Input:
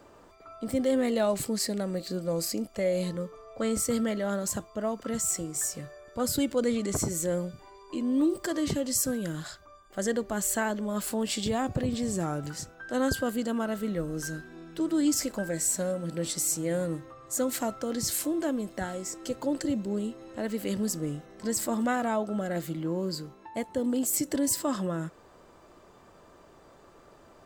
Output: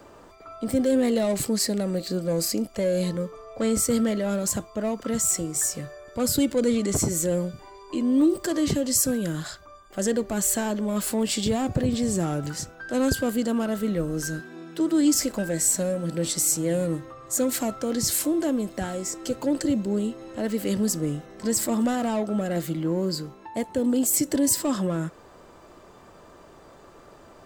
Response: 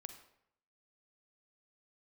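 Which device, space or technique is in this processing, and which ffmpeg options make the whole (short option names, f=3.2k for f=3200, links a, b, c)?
one-band saturation: -filter_complex "[0:a]asettb=1/sr,asplit=3[a][b][c];[a]atrim=end=14.394[d];[b]atrim=start=14.39:end=15.15,asetpts=PTS-STARTPTS,afade=t=in:d=0.004:c=qsin,afade=t=out:st=0.756:d=0.004:c=qsin,highpass=150[e];[c]atrim=start=15.146[f];[d][e]acrossfade=d=0.004:c1=hsin:c2=qsin[g];[g][f]acrossfade=d=0.004:c1=qsin:c2=hsin,acrossover=split=540|3900[h][i][j];[i]asoftclip=type=tanh:threshold=-36.5dB[k];[h][k][j]amix=inputs=3:normalize=0,volume=5.5dB"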